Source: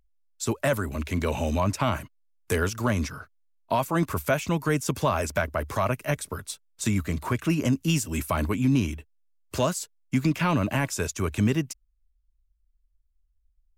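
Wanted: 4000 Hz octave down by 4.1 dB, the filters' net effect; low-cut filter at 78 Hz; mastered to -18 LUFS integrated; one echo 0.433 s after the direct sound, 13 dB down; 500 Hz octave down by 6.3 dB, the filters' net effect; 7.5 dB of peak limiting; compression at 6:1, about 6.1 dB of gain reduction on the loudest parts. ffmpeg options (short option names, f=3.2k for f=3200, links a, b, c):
-af "highpass=78,equalizer=f=500:t=o:g=-8.5,equalizer=f=4k:t=o:g=-6,acompressor=threshold=-26dB:ratio=6,alimiter=limit=-23dB:level=0:latency=1,aecho=1:1:433:0.224,volume=16dB"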